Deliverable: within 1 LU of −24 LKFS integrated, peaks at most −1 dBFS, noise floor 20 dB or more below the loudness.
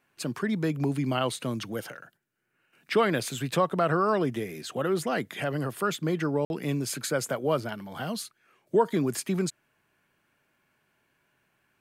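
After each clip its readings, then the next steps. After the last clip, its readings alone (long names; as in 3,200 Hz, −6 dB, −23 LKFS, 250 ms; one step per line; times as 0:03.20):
number of dropouts 1; longest dropout 51 ms; integrated loudness −29.0 LKFS; sample peak −11.0 dBFS; target loudness −24.0 LKFS
→ repair the gap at 0:06.45, 51 ms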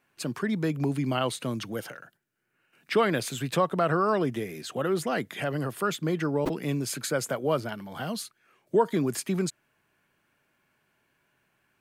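number of dropouts 0; integrated loudness −28.5 LKFS; sample peak −11.0 dBFS; target loudness −24.0 LKFS
→ level +4.5 dB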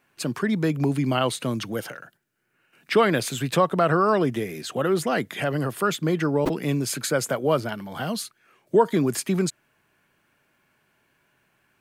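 integrated loudness −24.0 LKFS; sample peak −6.5 dBFS; background noise floor −68 dBFS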